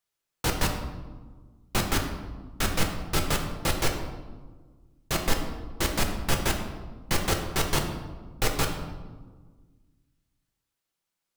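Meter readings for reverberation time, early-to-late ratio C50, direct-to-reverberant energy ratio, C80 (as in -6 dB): 1.5 s, 6.0 dB, 2.0 dB, 8.0 dB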